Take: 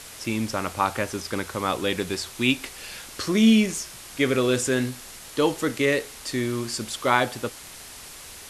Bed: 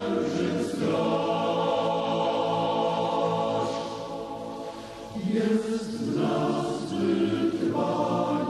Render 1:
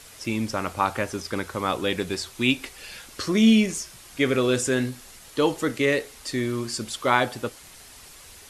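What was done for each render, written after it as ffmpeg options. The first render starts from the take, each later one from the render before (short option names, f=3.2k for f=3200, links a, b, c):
-af "afftdn=nr=6:nf=-42"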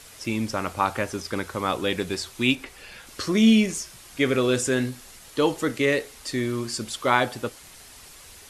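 -filter_complex "[0:a]asettb=1/sr,asplit=3[a][b][c];[a]atrim=end=2.554[d];[b]atrim=start=2.55:end=3.07,asetpts=PTS-STARTPTS,afade=t=in:d=0.004:c=qsin,afade=t=out:st=0.516:d=0.004:c=qsin,acrossover=split=2700[e][f];[f]acompressor=threshold=-47dB:ratio=4:attack=1:release=60[g];[e][g]amix=inputs=2:normalize=0[h];[c]atrim=start=3.066[i];[d][h]acrossfade=d=0.004:c1=hsin:c2=qsin[j];[j][i]acrossfade=d=0.004:c1=qsin:c2=hsin"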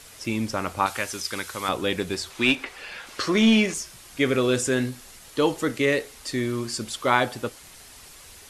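-filter_complex "[0:a]asettb=1/sr,asplit=3[a][b][c];[a]atrim=end=0.864[d];[b]atrim=start=0.86:end=1.69,asetpts=PTS-STARTPTS,afade=t=in:d=0.004:c=qsin,afade=t=out:st=0.826:d=0.004:c=qsin,tiltshelf=f=1.4k:g=-7.5[e];[c]atrim=start=1.686[f];[d][e]acrossfade=d=0.004:c1=hsin:c2=qsin[g];[g][f]acrossfade=d=0.004:c1=qsin:c2=hsin,asettb=1/sr,asplit=3[h][i][j];[h]atrim=end=2.304[k];[i]atrim=start=2.3:end=3.74,asetpts=PTS-STARTPTS,afade=t=in:d=0.004:c=qsin,afade=t=out:st=1.436:d=0.004:c=qsin,asplit=2[l][m];[m]highpass=f=720:p=1,volume=13dB,asoftclip=type=tanh:threshold=-7dB[n];[l][n]amix=inputs=2:normalize=0,lowpass=f=2.7k:p=1,volume=-6dB[o];[j]atrim=start=3.736[p];[k][o]acrossfade=d=0.004:c1=hsin:c2=qsin[q];[q][p]acrossfade=d=0.004:c1=qsin:c2=hsin"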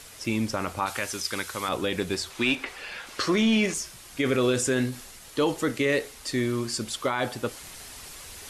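-af "areverse,acompressor=mode=upward:threshold=-36dB:ratio=2.5,areverse,alimiter=limit=-14.5dB:level=0:latency=1:release=19"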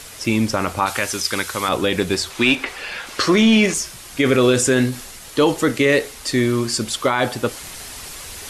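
-af "volume=8.5dB"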